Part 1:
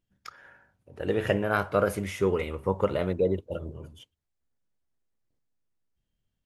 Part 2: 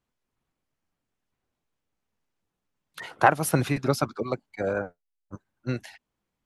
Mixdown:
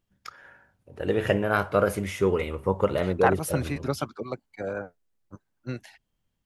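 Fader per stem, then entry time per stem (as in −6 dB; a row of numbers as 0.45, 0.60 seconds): +2.0, −4.5 decibels; 0.00, 0.00 seconds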